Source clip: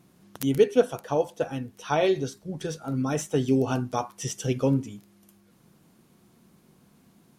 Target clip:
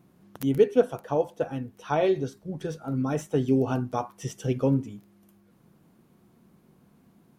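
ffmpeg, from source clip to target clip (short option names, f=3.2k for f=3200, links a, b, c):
-af "equalizer=f=6.7k:t=o:w=2.8:g=-9"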